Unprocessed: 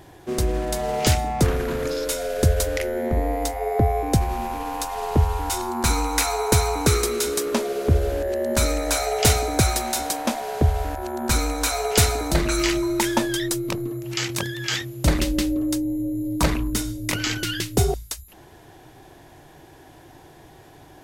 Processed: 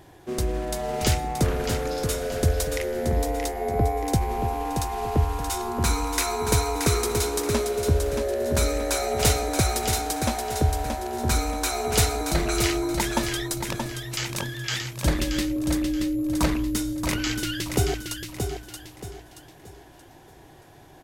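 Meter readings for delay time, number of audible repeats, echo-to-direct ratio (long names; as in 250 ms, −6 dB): 627 ms, 4, −5.5 dB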